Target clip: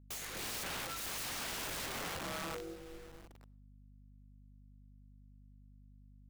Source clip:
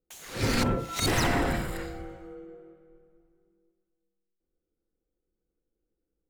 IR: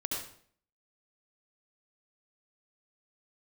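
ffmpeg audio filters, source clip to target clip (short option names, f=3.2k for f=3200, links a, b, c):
-filter_complex "[0:a]equalizer=f=2.1k:w=1.6:g=3.5,bandreject=f=57.19:t=h:w=4,bandreject=f=114.38:t=h:w=4,bandreject=f=171.57:t=h:w=4,bandreject=f=228.76:t=h:w=4,bandreject=f=285.95:t=h:w=4,bandreject=f=343.14:t=h:w=4,bandreject=f=400.33:t=h:w=4,bandreject=f=457.52:t=h:w=4,bandreject=f=514.71:t=h:w=4,bandreject=f=571.9:t=h:w=4,areverse,acompressor=threshold=-38dB:ratio=16,areverse,aeval=exprs='(mod(119*val(0)+1,2)-1)/119':c=same,acrusher=bits=9:mix=0:aa=0.000001,aeval=exprs='val(0)+0.000708*(sin(2*PI*50*n/s)+sin(2*PI*2*50*n/s)/2+sin(2*PI*3*50*n/s)/3+sin(2*PI*4*50*n/s)/4+sin(2*PI*5*50*n/s)/5)':c=same,asplit=2[a][b];[1:a]atrim=start_sample=2205[c];[b][c]afir=irnorm=-1:irlink=0,volume=-25.5dB[d];[a][d]amix=inputs=2:normalize=0,volume=5dB"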